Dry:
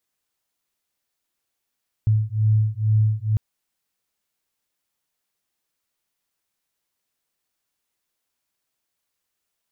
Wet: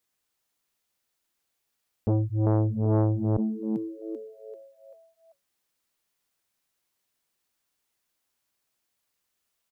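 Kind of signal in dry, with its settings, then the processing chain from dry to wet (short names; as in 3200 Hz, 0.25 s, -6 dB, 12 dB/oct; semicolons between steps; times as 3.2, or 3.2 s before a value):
beating tones 107 Hz, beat 2.2 Hz, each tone -19.5 dBFS 1.30 s
on a send: frequency-shifting echo 0.389 s, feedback 42%, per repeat +110 Hz, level -8 dB; on the sum: core saturation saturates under 400 Hz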